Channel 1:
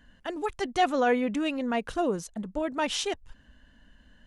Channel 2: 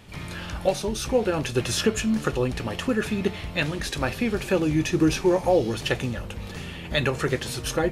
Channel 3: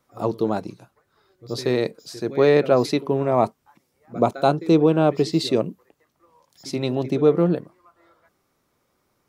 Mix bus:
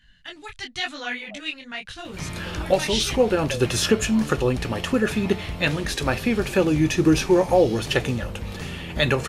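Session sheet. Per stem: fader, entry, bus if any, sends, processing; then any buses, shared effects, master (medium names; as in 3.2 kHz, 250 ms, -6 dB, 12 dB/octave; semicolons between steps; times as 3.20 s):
+2.5 dB, 0.00 s, no send, graphic EQ 125/250/500/1000/2000/4000 Hz +6/-8/-12/-8/+6/+10 dB; detune thickener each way 31 cents
+3.0 dB, 2.05 s, no send, none
-11.0 dB, 0.80 s, no send, wah-wah 0.93 Hz 360–1100 Hz, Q 12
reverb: none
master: none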